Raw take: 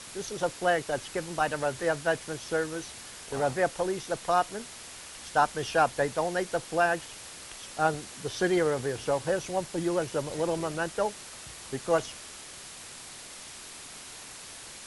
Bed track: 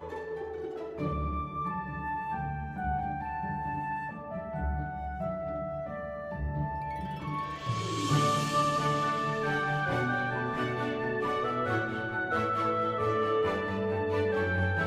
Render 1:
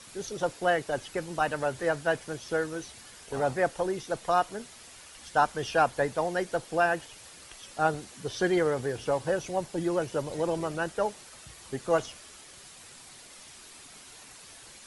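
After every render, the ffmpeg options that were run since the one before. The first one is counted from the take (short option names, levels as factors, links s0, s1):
-af "afftdn=nr=7:nf=-45"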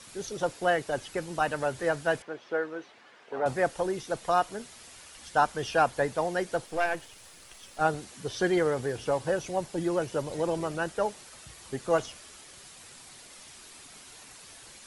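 -filter_complex "[0:a]asettb=1/sr,asplit=3[s0][s1][s2];[s0]atrim=end=2.224[s3];[s1]atrim=start=2.22:end=3.46,asetpts=PTS-STARTPTS,afade=t=in:d=0.004:c=qsin,afade=t=out:st=1.236:d=0.004:c=qsin,highpass=320,lowpass=2300[s4];[s2]atrim=start=3.456[s5];[s3][s4]acrossfade=d=0.004:c1=hsin:c2=qsin[s6];[s6][s5]acrossfade=d=0.004:c1=qsin:c2=hsin,asettb=1/sr,asplit=3[s7][s8][s9];[s7]atrim=end=6.664[s10];[s8]atrim=start=6.66:end=7.81,asetpts=PTS-STARTPTS,afade=t=in:d=0.004:c=qsin,afade=t=out:st=1.146:d=0.004:c=qsin,aeval=exprs='if(lt(val(0),0),0.447*val(0),val(0))':c=same[s11];[s9]atrim=start=7.806[s12];[s10][s11]acrossfade=d=0.004:c1=hsin:c2=qsin[s13];[s13][s12]acrossfade=d=0.004:c1=qsin:c2=hsin"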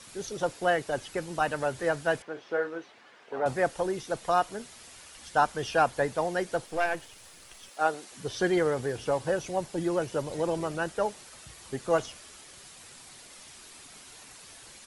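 -filter_complex "[0:a]asplit=3[s0][s1][s2];[s0]afade=t=out:st=2.35:d=0.02[s3];[s1]asplit=2[s4][s5];[s5]adelay=36,volume=0.376[s6];[s4][s6]amix=inputs=2:normalize=0,afade=t=in:st=2.35:d=0.02,afade=t=out:st=2.77:d=0.02[s7];[s2]afade=t=in:st=2.77:d=0.02[s8];[s3][s7][s8]amix=inputs=3:normalize=0,asettb=1/sr,asplit=3[s9][s10][s11];[s9]atrim=end=7.694[s12];[s10]atrim=start=7.69:end=8.12,asetpts=PTS-STARTPTS,afade=t=in:d=0.004:c=qsin,afade=t=out:st=0.426:d=0.004:c=qsin,highpass=350[s13];[s11]atrim=start=8.116[s14];[s12][s13]acrossfade=d=0.004:c1=hsin:c2=qsin[s15];[s15][s14]acrossfade=d=0.004:c1=qsin:c2=hsin"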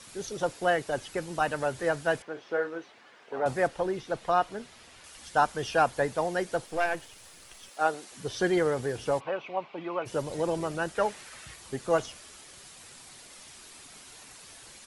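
-filter_complex "[0:a]asettb=1/sr,asplit=3[s0][s1][s2];[s0]atrim=end=3.674[s3];[s1]atrim=start=3.67:end=5.04,asetpts=PTS-STARTPTS,afade=t=in:d=0.004:c=qsin,afade=t=out:st=1.366:d=0.004:c=qsin,acrossover=split=4600[s4][s5];[s5]acompressor=threshold=0.00112:ratio=4:attack=1:release=60[s6];[s4][s6]amix=inputs=2:normalize=0[s7];[s2]atrim=start=5.036[s8];[s3][s7]acrossfade=d=0.004:c1=hsin:c2=qsin[s9];[s9][s8]acrossfade=d=0.004:c1=qsin:c2=hsin,asplit=3[s10][s11][s12];[s10]afade=t=out:st=9.19:d=0.02[s13];[s11]highpass=340,equalizer=f=340:t=q:w=4:g=-5,equalizer=f=500:t=q:w=4:g=-5,equalizer=f=1100:t=q:w=4:g=7,equalizer=f=1700:t=q:w=4:g=-8,equalizer=f=2400:t=q:w=4:g=8,lowpass=f=3100:w=0.5412,lowpass=f=3100:w=1.3066,afade=t=in:st=9.19:d=0.02,afade=t=out:st=10.05:d=0.02[s14];[s12]afade=t=in:st=10.05:d=0.02[s15];[s13][s14][s15]amix=inputs=3:normalize=0,asettb=1/sr,asplit=3[s16][s17][s18];[s16]atrim=end=10.954[s19];[s17]atrim=start=10.95:end=11.56,asetpts=PTS-STARTPTS,afade=t=in:d=0.004:c=qsin,afade=t=out:st=0.606:d=0.004:c=qsin,equalizer=f=1900:t=o:w=1.4:g=7.5[s20];[s18]atrim=start=11.556[s21];[s19][s20]acrossfade=d=0.004:c1=hsin:c2=qsin[s22];[s22][s21]acrossfade=d=0.004:c1=qsin:c2=hsin"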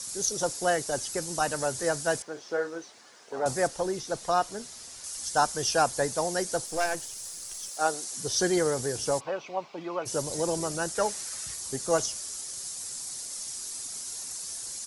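-af "highshelf=f=4100:t=q:w=1.5:g=12.5"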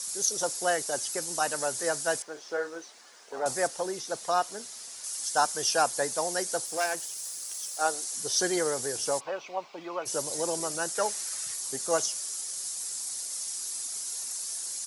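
-af "highpass=f=430:p=1,highshelf=f=11000:g=7"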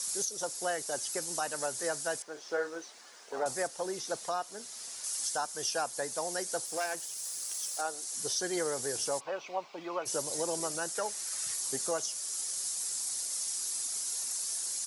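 -af "alimiter=limit=0.0794:level=0:latency=1:release=486"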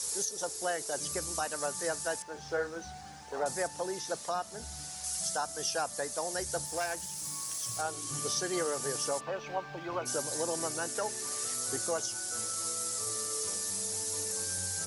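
-filter_complex "[1:a]volume=0.158[s0];[0:a][s0]amix=inputs=2:normalize=0"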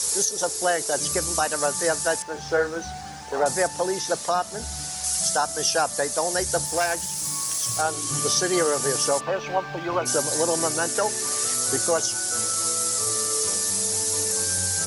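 -af "volume=3.35"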